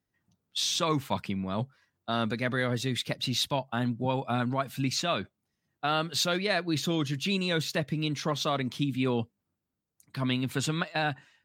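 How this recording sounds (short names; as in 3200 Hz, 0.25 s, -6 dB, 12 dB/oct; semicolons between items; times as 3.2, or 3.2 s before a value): noise floor -84 dBFS; spectral tilt -4.5 dB/oct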